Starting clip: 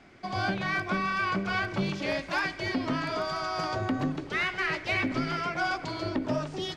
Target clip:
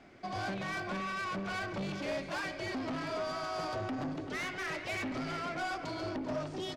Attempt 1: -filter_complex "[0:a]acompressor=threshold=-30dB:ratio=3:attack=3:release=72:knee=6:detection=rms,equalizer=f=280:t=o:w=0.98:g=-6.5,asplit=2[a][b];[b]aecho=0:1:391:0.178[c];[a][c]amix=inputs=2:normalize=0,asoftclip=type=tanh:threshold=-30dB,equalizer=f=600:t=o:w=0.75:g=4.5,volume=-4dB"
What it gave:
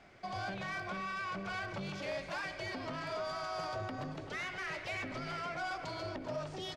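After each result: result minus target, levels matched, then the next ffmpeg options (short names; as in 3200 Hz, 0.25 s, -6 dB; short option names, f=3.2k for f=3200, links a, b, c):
compressor: peak gain reduction +7 dB; 250 Hz band -4.5 dB
-filter_complex "[0:a]equalizer=f=280:t=o:w=0.98:g=-6.5,asplit=2[a][b];[b]aecho=0:1:391:0.178[c];[a][c]amix=inputs=2:normalize=0,asoftclip=type=tanh:threshold=-30dB,equalizer=f=600:t=o:w=0.75:g=4.5,volume=-4dB"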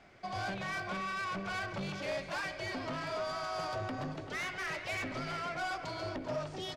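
250 Hz band -4.0 dB
-filter_complex "[0:a]equalizer=f=280:t=o:w=0.98:g=2.5,asplit=2[a][b];[b]aecho=0:1:391:0.178[c];[a][c]amix=inputs=2:normalize=0,asoftclip=type=tanh:threshold=-30dB,equalizer=f=600:t=o:w=0.75:g=4.5,volume=-4dB"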